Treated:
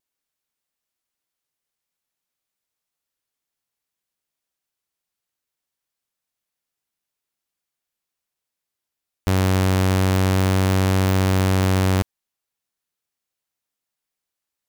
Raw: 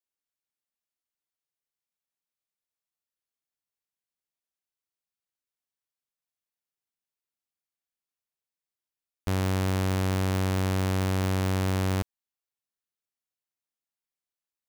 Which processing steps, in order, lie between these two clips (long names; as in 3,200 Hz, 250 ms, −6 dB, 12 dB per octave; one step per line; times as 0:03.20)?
pitch vibrato 0.39 Hz 6.9 cents
level +8 dB